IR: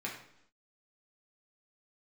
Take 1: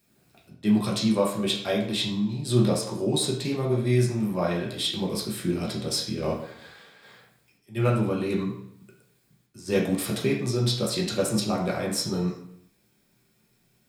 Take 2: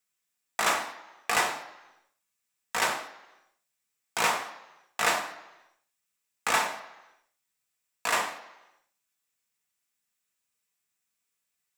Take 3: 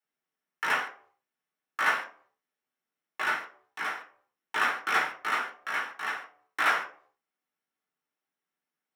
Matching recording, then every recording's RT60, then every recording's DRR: 1; 0.75 s, 1.0 s, non-exponential decay; −3.5, 2.0, −4.0 decibels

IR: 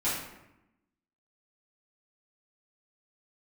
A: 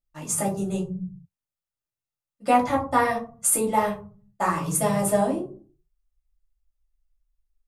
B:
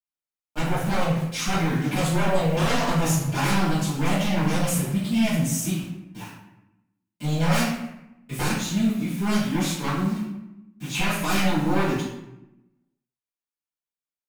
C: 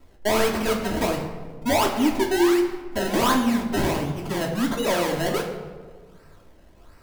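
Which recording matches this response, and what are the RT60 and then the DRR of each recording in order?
B; 0.40, 0.90, 1.6 seconds; −3.0, −12.0, −0.5 decibels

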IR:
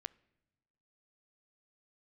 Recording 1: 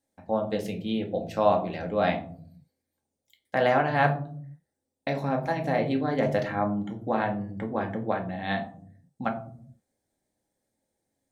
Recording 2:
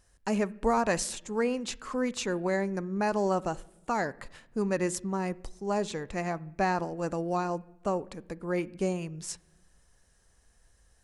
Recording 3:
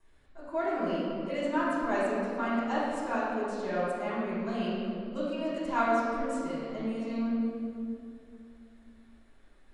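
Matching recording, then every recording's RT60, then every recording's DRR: 2; 0.55 s, non-exponential decay, 2.6 s; 2.0, 20.0, −11.0 decibels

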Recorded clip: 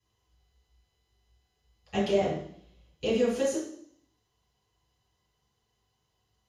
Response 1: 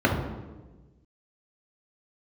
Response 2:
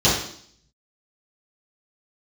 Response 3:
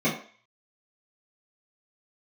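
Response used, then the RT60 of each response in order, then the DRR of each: 2; 1.2, 0.60, 0.45 seconds; −1.0, −10.0, −10.0 decibels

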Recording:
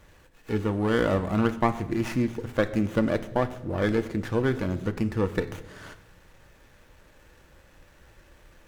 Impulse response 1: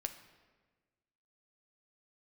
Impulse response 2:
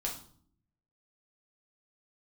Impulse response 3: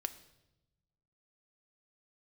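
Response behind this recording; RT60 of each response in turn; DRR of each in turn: 3; 1.4, 0.55, 0.95 seconds; 7.0, −2.5, 8.5 decibels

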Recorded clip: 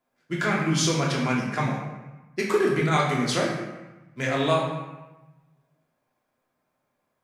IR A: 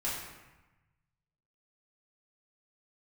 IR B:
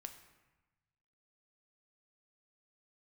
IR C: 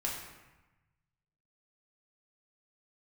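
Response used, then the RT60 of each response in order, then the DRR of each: C; 1.1, 1.1, 1.1 seconds; −8.5, 6.0, −4.0 decibels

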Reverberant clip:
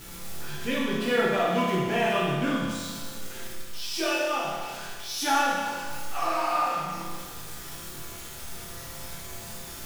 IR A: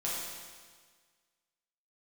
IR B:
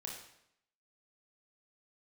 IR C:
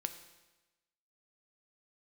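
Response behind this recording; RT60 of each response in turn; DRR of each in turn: A; 1.6, 0.75, 1.1 seconds; −7.5, −1.5, 8.0 decibels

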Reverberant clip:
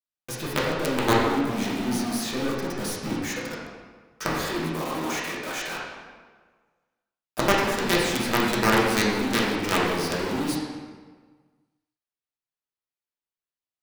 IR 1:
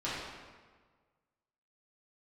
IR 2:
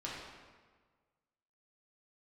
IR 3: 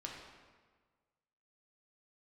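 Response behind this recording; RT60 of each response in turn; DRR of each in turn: 2; 1.5, 1.5, 1.5 seconds; −10.5, −6.5, −2.0 decibels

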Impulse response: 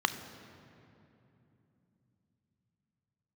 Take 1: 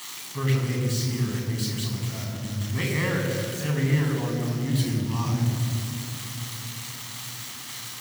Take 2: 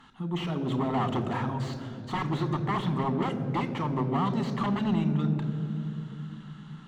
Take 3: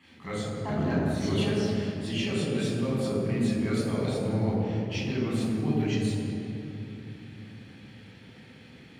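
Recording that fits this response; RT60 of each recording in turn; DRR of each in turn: 2; 2.9, 2.9, 2.9 seconds; 1.5, 9.5, −7.0 decibels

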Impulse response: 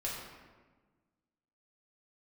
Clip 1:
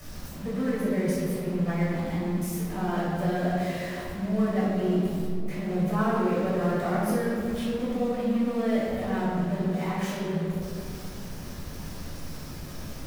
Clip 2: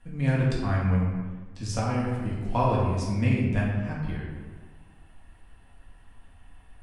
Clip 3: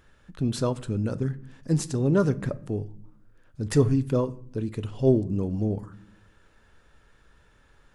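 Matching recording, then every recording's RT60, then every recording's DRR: 2; 2.3 s, 1.4 s, non-exponential decay; −10.5, −5.5, 14.5 decibels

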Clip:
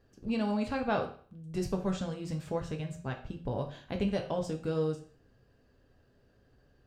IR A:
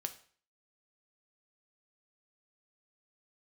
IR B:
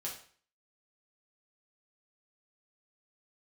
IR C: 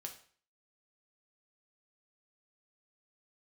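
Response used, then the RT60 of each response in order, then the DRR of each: C; 0.45, 0.45, 0.45 seconds; 7.5, −4.0, 3.0 decibels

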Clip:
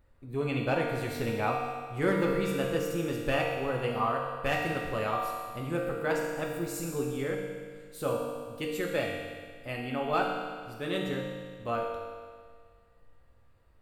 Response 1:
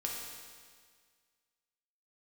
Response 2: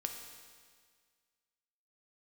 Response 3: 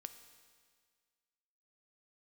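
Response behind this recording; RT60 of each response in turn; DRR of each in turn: 1; 1.8, 1.8, 1.8 seconds; −2.5, 3.5, 9.0 decibels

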